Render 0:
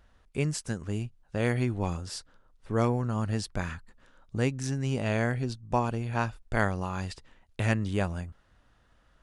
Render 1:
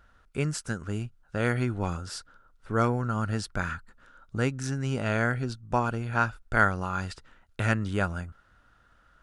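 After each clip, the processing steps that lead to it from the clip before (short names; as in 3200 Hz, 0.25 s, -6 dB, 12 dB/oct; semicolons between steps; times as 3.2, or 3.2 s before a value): bell 1400 Hz +13.5 dB 0.3 oct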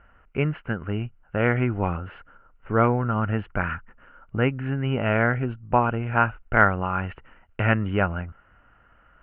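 rippled Chebyshev low-pass 3000 Hz, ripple 3 dB; gain +7 dB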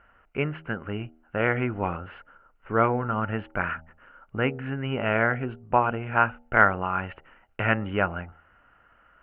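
low shelf 200 Hz -8.5 dB; de-hum 79.4 Hz, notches 11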